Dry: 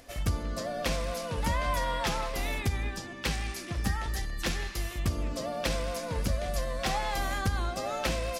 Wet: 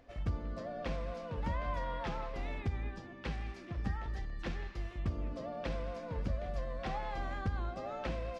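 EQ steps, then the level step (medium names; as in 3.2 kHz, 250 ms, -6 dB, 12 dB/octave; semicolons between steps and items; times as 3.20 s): tape spacing loss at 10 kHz 29 dB; -5.5 dB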